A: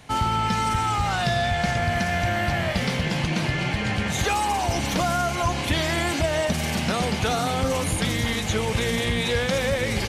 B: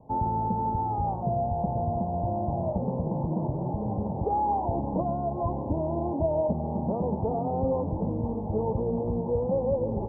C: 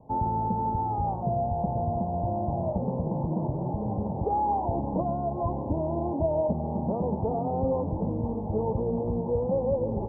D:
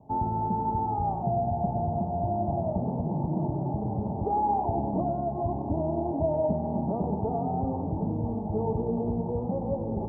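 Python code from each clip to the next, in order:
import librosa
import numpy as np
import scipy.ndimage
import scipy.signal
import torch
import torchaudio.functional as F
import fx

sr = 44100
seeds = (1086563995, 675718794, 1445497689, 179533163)

y1 = scipy.signal.sosfilt(scipy.signal.butter(12, 940.0, 'lowpass', fs=sr, output='sos'), x)
y1 = fx.low_shelf(y1, sr, hz=180.0, db=-6.0)
y1 = fx.notch(y1, sr, hz=730.0, q=12.0)
y2 = y1
y3 = fx.notch_comb(y2, sr, f0_hz=510.0)
y3 = fx.echo_tape(y3, sr, ms=97, feedback_pct=78, wet_db=-8.5, lp_hz=1200.0, drive_db=11.0, wow_cents=19)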